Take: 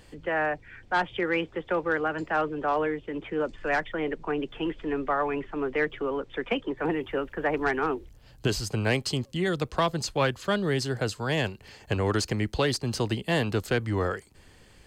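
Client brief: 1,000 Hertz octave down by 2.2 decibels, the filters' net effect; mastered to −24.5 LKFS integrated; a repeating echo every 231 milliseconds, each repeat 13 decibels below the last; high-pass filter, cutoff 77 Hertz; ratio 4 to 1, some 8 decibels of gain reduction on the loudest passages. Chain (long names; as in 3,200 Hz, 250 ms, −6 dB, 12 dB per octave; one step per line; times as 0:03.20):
high-pass filter 77 Hz
parametric band 1,000 Hz −3 dB
downward compressor 4 to 1, threshold −31 dBFS
repeating echo 231 ms, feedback 22%, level −13 dB
level +10.5 dB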